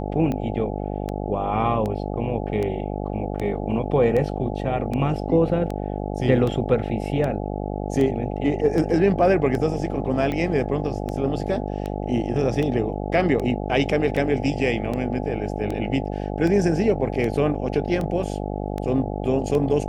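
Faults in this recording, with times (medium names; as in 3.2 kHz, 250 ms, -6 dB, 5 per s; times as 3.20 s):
buzz 50 Hz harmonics 17 -28 dBFS
tick 78 rpm -16 dBFS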